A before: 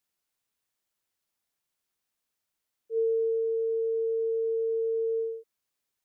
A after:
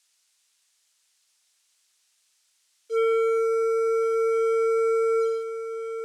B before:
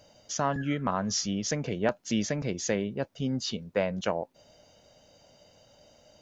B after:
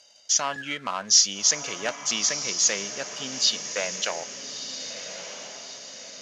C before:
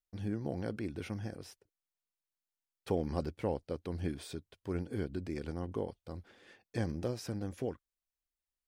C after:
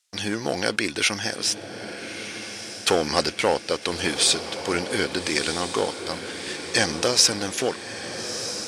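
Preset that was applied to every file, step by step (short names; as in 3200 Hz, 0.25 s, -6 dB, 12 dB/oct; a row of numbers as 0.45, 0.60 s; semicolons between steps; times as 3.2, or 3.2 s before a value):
sample leveller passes 1; weighting filter ITU-R 468; diffused feedback echo 1.292 s, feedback 51%, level -9.5 dB; match loudness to -24 LUFS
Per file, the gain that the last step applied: +9.5, -2.0, +16.5 dB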